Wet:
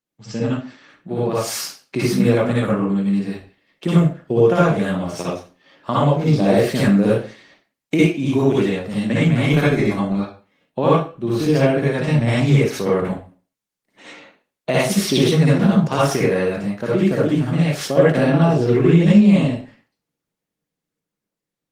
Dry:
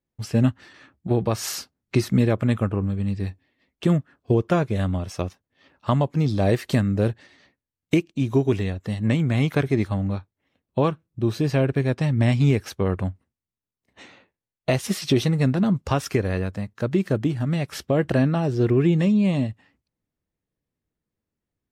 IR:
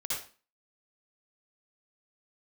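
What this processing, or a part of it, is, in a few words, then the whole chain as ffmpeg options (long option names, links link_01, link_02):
far-field microphone of a smart speaker: -filter_complex "[1:a]atrim=start_sample=2205[link_01];[0:a][link_01]afir=irnorm=-1:irlink=0,highpass=frequency=150:width=0.5412,highpass=frequency=150:width=1.3066,dynaudnorm=framelen=530:gausssize=7:maxgain=7dB" -ar 48000 -c:a libopus -b:a 20k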